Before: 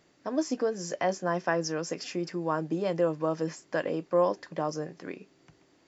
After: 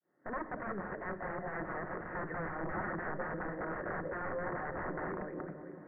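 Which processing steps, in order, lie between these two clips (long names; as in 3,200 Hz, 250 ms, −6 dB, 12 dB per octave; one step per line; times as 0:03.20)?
fade in at the beginning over 1.15 s
Bessel high-pass filter 190 Hz, order 2
echo with a time of its own for lows and highs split 430 Hz, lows 296 ms, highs 193 ms, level −14 dB
dynamic equaliser 390 Hz, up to +3 dB, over −44 dBFS, Q 7.2
downward compressor 4 to 1, threshold −38 dBFS, peak gain reduction 15.5 dB
wrap-around overflow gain 40 dB
Chebyshev low-pass filter 1,900 Hz, order 6
rectangular room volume 2,300 cubic metres, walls furnished, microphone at 0.97 metres
level +9 dB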